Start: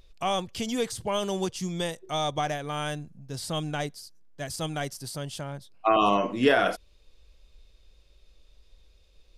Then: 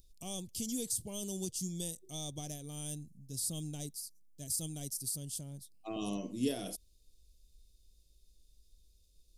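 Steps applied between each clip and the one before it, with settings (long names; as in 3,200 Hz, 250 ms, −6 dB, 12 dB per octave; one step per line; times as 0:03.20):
drawn EQ curve 270 Hz 0 dB, 1,500 Hz −26 dB, 4,000 Hz −1 dB, 9,800 Hz +14 dB
level −7.5 dB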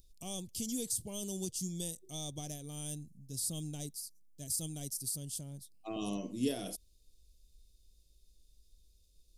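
no processing that can be heard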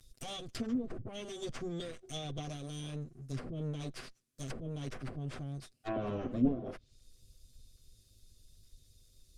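lower of the sound and its delayed copy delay 7.9 ms
treble cut that deepens with the level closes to 450 Hz, closed at −34.5 dBFS
parametric band 900 Hz −11 dB 0.28 octaves
level +7 dB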